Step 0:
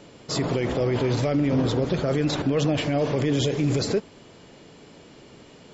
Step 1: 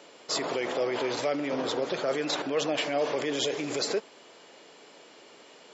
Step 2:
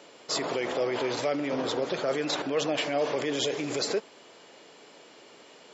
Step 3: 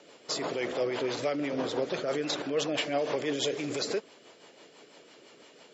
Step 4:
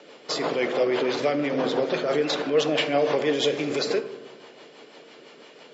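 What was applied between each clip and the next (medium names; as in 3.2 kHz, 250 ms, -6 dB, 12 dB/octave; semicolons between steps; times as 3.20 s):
high-pass 490 Hz 12 dB/octave
bass shelf 93 Hz +8.5 dB
rotary cabinet horn 6 Hz
band-pass 170–4900 Hz; reverberation RT60 1.2 s, pre-delay 3 ms, DRR 8.5 dB; trim +6.5 dB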